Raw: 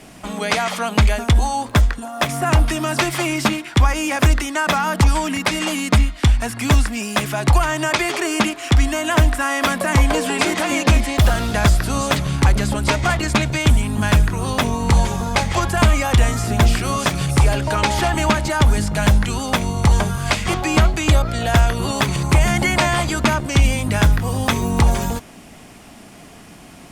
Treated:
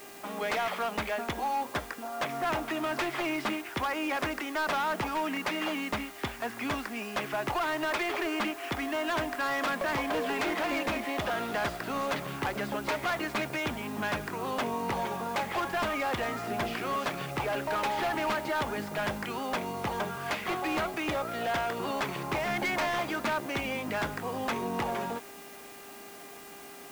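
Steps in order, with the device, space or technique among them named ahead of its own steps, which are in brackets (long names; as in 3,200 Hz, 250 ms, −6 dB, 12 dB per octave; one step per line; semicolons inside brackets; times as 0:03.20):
aircraft radio (band-pass filter 310–2,500 Hz; hard clipping −20 dBFS, distortion −9 dB; hum with harmonics 400 Hz, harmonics 7, −45 dBFS; white noise bed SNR 19 dB)
level −6.5 dB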